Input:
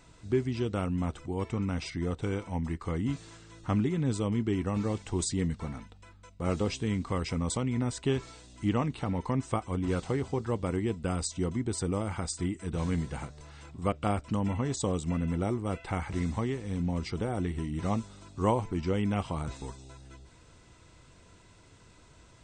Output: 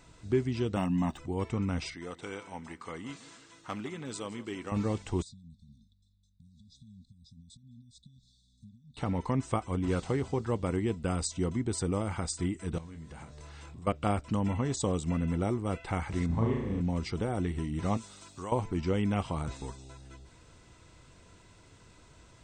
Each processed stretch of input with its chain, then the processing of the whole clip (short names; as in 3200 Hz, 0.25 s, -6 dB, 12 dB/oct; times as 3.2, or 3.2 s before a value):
0.76–1.18 median filter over 3 samples + resonant low shelf 150 Hz -9 dB, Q 1.5 + comb 1.1 ms, depth 82%
1.94–4.72 overloaded stage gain 20.5 dB + HPF 820 Hz 6 dB/oct + feedback echo 0.162 s, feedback 54%, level -17 dB
5.22–8.97 three-band isolator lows -14 dB, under 460 Hz, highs -20 dB, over 2900 Hz + compressor 5:1, threshold -45 dBFS + brick-wall FIR band-stop 250–3400 Hz
12.78–13.87 doubler 25 ms -8 dB + compressor 8:1, threshold -42 dBFS
16.26–16.81 LPF 1100 Hz 6 dB/oct + flutter echo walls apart 6.1 m, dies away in 0.88 s
17.97–18.52 tilt +2.5 dB/oct + compressor 3:1, threshold -38 dBFS
whole clip: dry